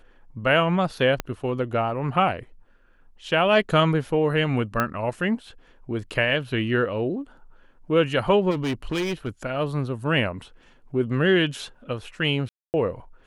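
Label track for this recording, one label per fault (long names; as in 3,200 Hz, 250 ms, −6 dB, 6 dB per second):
1.200000	1.200000	click −11 dBFS
4.800000	4.800000	click −9 dBFS
8.500000	9.290000	clipping −22.5 dBFS
12.490000	12.740000	drop-out 249 ms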